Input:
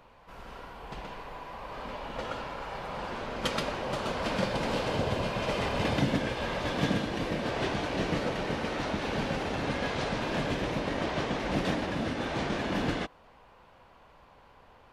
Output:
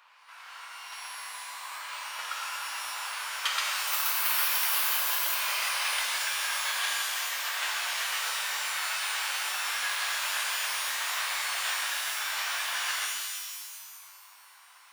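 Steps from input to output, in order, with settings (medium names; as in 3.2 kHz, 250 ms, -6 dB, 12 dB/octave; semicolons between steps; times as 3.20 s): high-pass 1.1 kHz 24 dB/octave; 3.87–5.35 s: careless resampling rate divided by 3×, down none, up zero stuff; pitch-shifted reverb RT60 1.7 s, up +12 st, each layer -2 dB, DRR 1.5 dB; trim +3 dB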